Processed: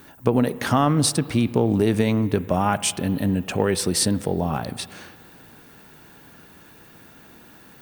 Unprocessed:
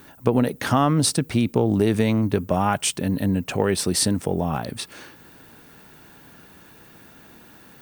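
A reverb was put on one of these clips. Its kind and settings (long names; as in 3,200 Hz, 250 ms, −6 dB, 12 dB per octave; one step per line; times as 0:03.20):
spring reverb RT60 2.1 s, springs 34/48 ms, chirp 75 ms, DRR 16 dB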